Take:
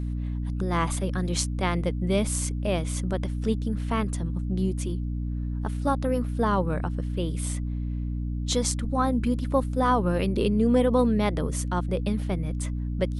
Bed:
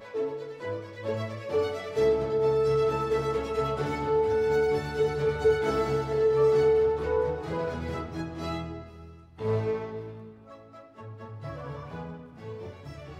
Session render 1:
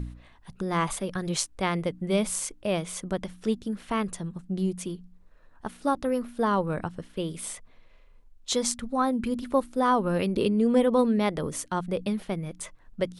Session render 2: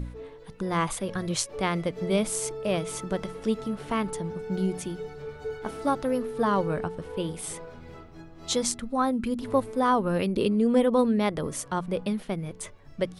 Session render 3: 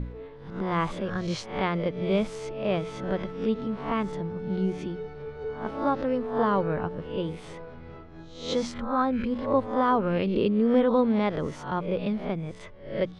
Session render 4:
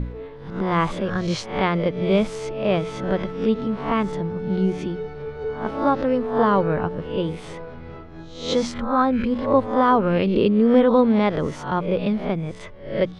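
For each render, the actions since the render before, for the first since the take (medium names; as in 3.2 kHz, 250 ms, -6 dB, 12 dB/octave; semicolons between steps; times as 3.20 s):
de-hum 60 Hz, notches 5
add bed -12 dB
reverse spectral sustain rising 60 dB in 0.50 s; distance through air 230 m
trim +6 dB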